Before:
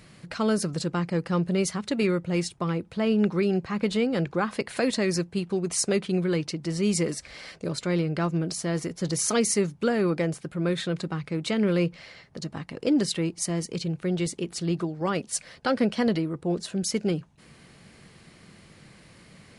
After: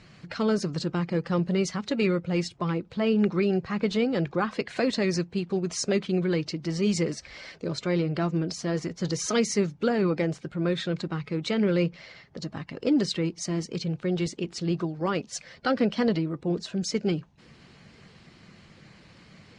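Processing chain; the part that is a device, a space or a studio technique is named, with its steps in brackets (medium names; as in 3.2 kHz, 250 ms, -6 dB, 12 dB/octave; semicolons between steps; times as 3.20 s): clip after many re-uploads (low-pass 6.6 kHz 24 dB/octave; coarse spectral quantiser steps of 15 dB)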